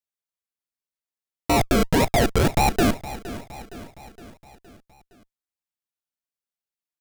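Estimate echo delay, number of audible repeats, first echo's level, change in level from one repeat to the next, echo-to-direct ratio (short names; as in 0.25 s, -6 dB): 0.465 s, 4, -15.5 dB, -5.0 dB, -14.0 dB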